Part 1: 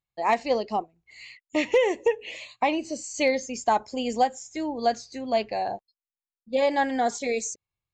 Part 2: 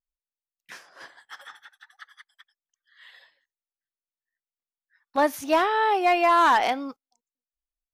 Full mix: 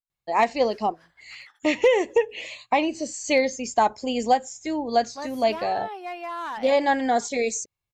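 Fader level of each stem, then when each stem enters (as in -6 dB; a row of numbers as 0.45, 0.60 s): +2.5, -14.0 dB; 0.10, 0.00 s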